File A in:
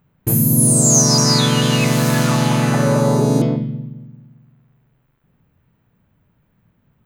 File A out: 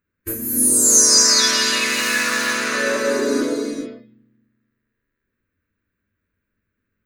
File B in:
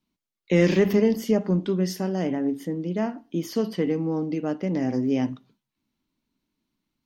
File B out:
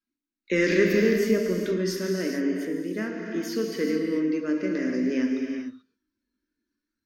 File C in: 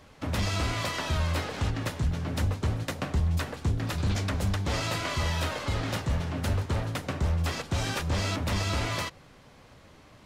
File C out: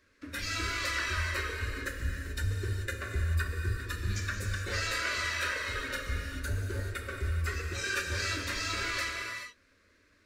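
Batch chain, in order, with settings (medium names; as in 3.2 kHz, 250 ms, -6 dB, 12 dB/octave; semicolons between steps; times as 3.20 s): peaking EQ 2.2 kHz +6.5 dB 2.9 oct; static phaser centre 330 Hz, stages 4; spectral noise reduction 12 dB; graphic EQ with 31 bands 100 Hz +7 dB, 1.6 kHz +7 dB, 3.15 kHz -9 dB; gated-style reverb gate 460 ms flat, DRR 1 dB; trim -2.5 dB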